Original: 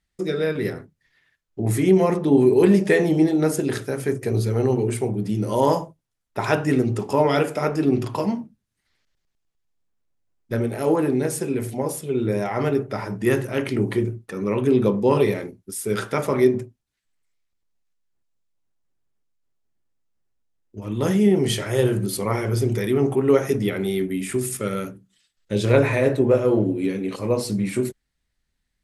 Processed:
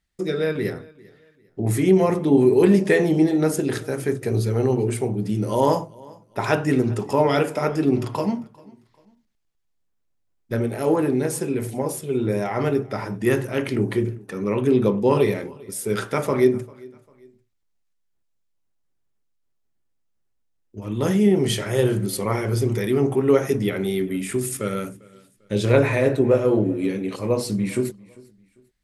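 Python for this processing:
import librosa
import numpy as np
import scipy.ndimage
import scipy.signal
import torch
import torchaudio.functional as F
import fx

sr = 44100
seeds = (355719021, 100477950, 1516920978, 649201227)

y = fx.echo_feedback(x, sr, ms=397, feedback_pct=35, wet_db=-24.0)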